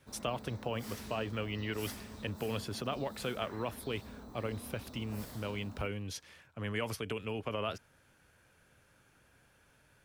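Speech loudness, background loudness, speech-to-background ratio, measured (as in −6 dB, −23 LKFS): −39.0 LKFS, −49.0 LKFS, 10.0 dB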